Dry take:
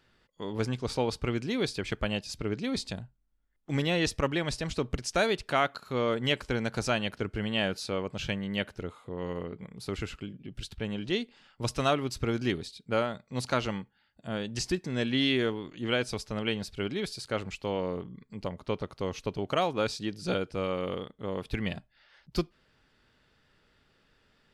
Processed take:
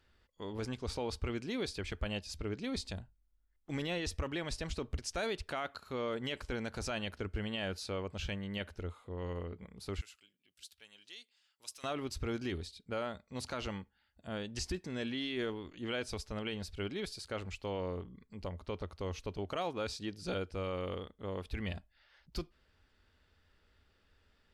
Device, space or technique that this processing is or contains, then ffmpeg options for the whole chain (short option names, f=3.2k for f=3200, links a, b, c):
car stereo with a boomy subwoofer: -filter_complex "[0:a]lowshelf=f=100:t=q:w=3:g=6,alimiter=limit=-21.5dB:level=0:latency=1:release=14,asettb=1/sr,asplit=3[a][b][c];[a]atrim=end=10.014[d];[b]atrim=start=10.01:end=11.84,asetpts=PTS-STARTPTS,afade=t=in:d=0.004:c=qsin,afade=t=out:st=1.826:d=0.004:c=qsin,aderivative[e];[c]atrim=start=11.836[f];[d][e]acrossfade=d=0.004:c1=hsin:c2=qsin[g];[g][f]acrossfade=d=0.004:c1=qsin:c2=hsin,volume=-5.5dB"